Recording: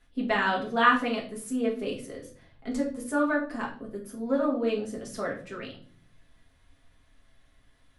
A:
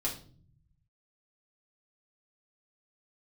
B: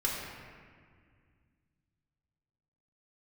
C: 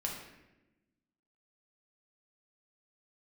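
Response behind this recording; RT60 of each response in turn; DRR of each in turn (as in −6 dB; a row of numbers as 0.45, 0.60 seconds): A; 0.45, 1.9, 1.0 seconds; −4.0, −4.0, −1.5 decibels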